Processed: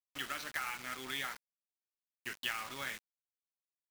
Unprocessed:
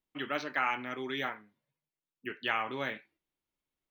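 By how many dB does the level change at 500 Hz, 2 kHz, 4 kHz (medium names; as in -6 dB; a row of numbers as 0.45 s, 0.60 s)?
-13.0 dB, -4.5 dB, -0.5 dB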